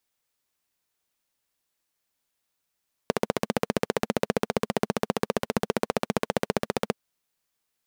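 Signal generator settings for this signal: single-cylinder engine model, steady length 3.83 s, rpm 1800, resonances 220/440 Hz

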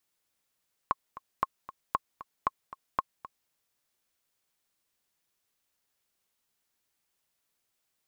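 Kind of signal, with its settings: metronome 231 bpm, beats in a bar 2, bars 5, 1.08 kHz, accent 16.5 dB -12 dBFS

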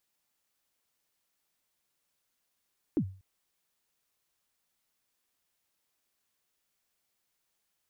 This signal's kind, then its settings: kick drum length 0.24 s, from 360 Hz, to 95 Hz, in 74 ms, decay 0.39 s, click off, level -21 dB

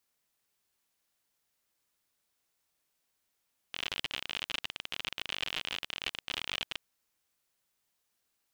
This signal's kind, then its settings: random clicks 57 per s -18.5 dBFS 3.02 s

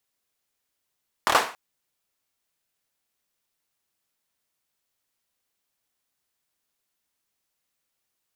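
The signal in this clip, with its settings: hand clap length 0.28 s, bursts 4, apart 26 ms, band 940 Hz, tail 0.38 s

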